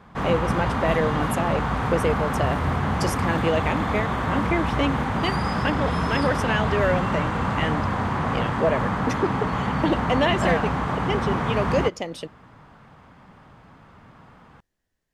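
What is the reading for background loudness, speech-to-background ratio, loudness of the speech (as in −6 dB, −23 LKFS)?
−25.0 LKFS, −2.0 dB, −27.0 LKFS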